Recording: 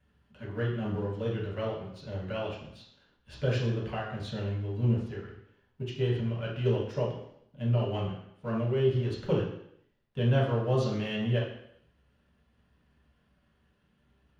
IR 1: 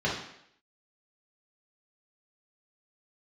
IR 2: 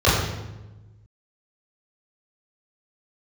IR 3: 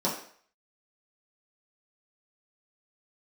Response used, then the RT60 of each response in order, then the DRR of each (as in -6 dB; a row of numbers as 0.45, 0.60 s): 1; 0.70, 1.1, 0.55 s; -6.0, -10.5, -7.0 dB